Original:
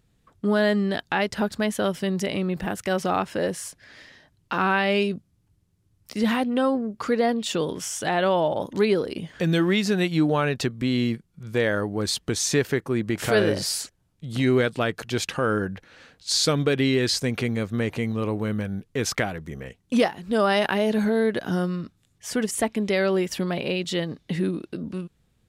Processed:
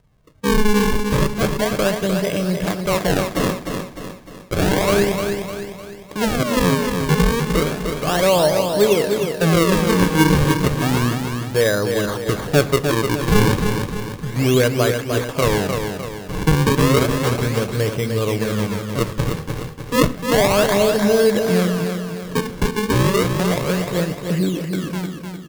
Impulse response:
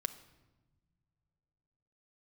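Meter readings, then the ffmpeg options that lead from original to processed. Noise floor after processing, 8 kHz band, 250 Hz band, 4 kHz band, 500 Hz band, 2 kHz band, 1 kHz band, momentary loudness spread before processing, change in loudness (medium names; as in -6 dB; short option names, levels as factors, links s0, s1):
-35 dBFS, +4.0 dB, +5.0 dB, +4.0 dB, +6.0 dB, +4.5 dB, +5.5 dB, 10 LU, +5.5 dB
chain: -filter_complex "[0:a]aemphasis=mode=reproduction:type=75kf,acrusher=samples=39:mix=1:aa=0.000001:lfo=1:lforange=62.4:lforate=0.32,aecho=1:1:303|606|909|1212|1515|1818:0.501|0.236|0.111|0.052|0.0245|0.0115,asplit=2[s0][s1];[1:a]atrim=start_sample=2205,atrim=end_sample=6174[s2];[s1][s2]afir=irnorm=-1:irlink=0,volume=2.37[s3];[s0][s3]amix=inputs=2:normalize=0,volume=0.596"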